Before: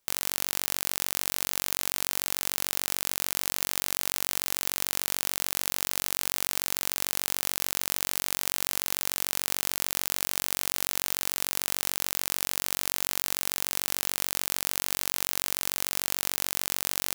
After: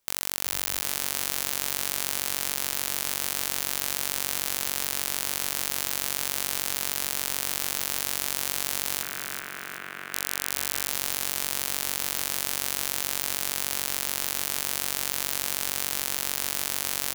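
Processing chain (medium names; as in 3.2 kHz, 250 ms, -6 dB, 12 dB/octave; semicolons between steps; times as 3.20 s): 9.02–10.13 s: cabinet simulation 170–2400 Hz, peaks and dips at 260 Hz -8 dB, 520 Hz -10 dB, 850 Hz -10 dB, 1.5 kHz +6 dB; frequency-shifting echo 377 ms, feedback 42%, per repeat +35 Hz, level -5.5 dB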